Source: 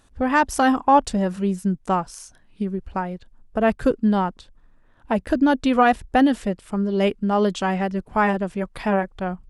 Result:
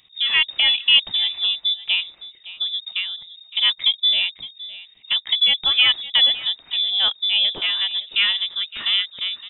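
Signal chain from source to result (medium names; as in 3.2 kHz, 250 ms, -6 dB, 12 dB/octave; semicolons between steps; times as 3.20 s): on a send: delay 563 ms -17 dB; on the sum: frequency inversion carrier 3.7 kHz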